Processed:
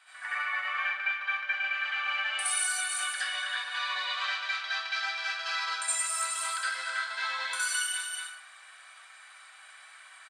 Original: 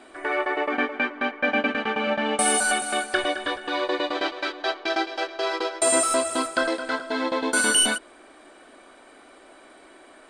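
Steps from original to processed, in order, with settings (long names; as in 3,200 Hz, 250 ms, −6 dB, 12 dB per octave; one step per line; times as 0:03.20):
high-pass filter 1,200 Hz 24 dB per octave
single-tap delay 227 ms −13 dB
downward compressor 5 to 1, threshold −31 dBFS, peak gain reduction 14 dB
convolution reverb RT60 0.55 s, pre-delay 61 ms, DRR −9 dB
level −6.5 dB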